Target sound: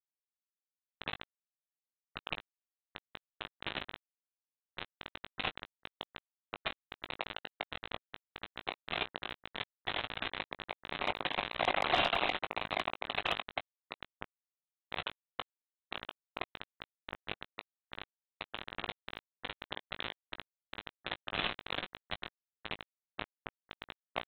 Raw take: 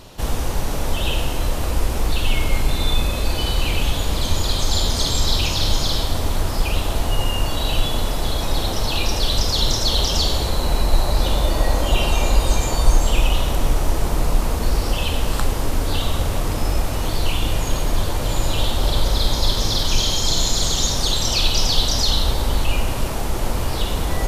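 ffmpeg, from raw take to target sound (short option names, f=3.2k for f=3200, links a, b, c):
-filter_complex "[0:a]asplit=3[a][b][c];[a]bandpass=f=730:t=q:w=8,volume=0dB[d];[b]bandpass=f=1.09k:t=q:w=8,volume=-6dB[e];[c]bandpass=f=2.44k:t=q:w=8,volume=-9dB[f];[d][e][f]amix=inputs=3:normalize=0,asplit=2[g][h];[h]adynamicsmooth=sensitivity=1:basefreq=690,volume=3dB[i];[g][i]amix=inputs=2:normalize=0,aderivative,aresample=8000,acrusher=bits=6:mix=0:aa=0.000001,aresample=44100,asplit=2[j][k];[k]asetrate=22050,aresample=44100,atempo=2,volume=-17dB[l];[j][l]amix=inputs=2:normalize=0,asplit=2[m][n];[n]adelay=19,volume=-11dB[o];[m][o]amix=inputs=2:normalize=0,volume=15dB" -ar 48000 -c:a aac -b:a 48k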